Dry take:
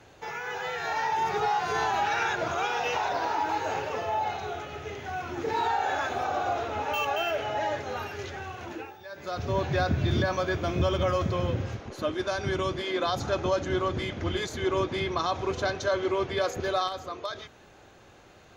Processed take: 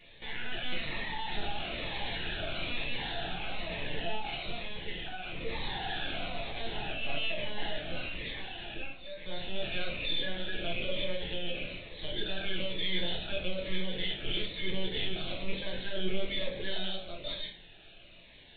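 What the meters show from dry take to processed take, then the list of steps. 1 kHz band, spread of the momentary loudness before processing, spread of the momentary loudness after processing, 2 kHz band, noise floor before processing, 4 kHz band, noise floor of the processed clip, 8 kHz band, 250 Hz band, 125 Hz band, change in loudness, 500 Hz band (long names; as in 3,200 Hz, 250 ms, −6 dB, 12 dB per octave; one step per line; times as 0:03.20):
−15.5 dB, 10 LU, 7 LU, −4.5 dB, −54 dBFS, +3.0 dB, −53 dBFS, below −35 dB, −7.5 dB, −11.0 dB, −7.0 dB, −10.5 dB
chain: loose part that buzzes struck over −29 dBFS, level −30 dBFS
first difference
mains-hum notches 50/100/150/200/250/300/350/400/450 Hz
in parallel at −4 dB: sine wavefolder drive 17 dB, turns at −25 dBFS
on the sum: phaser with its sweep stopped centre 450 Hz, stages 4
linear-prediction vocoder at 8 kHz pitch kept
rectangular room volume 36 cubic metres, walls mixed, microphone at 0.74 metres
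phaser whose notches keep moving one way falling 1.1 Hz
level −2.5 dB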